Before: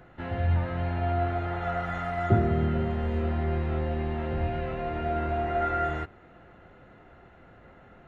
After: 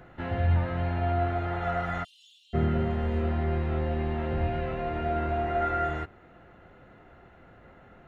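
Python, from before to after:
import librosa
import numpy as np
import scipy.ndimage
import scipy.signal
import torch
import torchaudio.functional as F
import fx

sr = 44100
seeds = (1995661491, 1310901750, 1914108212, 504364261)

y = fx.steep_highpass(x, sr, hz=2900.0, slope=96, at=(2.03, 2.53), fade=0.02)
y = fx.rider(y, sr, range_db=4, speed_s=2.0)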